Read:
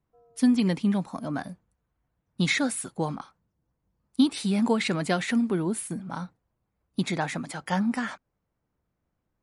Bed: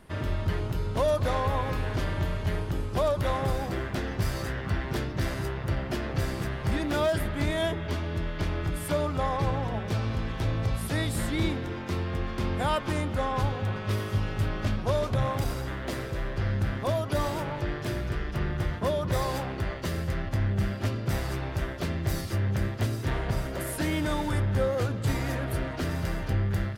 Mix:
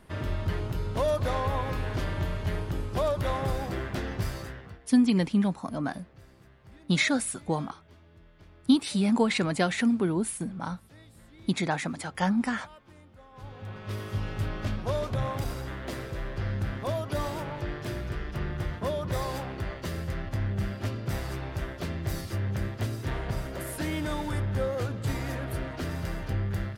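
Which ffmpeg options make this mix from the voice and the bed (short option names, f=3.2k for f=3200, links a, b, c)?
-filter_complex "[0:a]adelay=4500,volume=0dB[a];[1:a]volume=20dB,afade=t=out:st=4.13:d=0.66:silence=0.0707946,afade=t=in:st=13.32:d=0.95:silence=0.0841395[b];[a][b]amix=inputs=2:normalize=0"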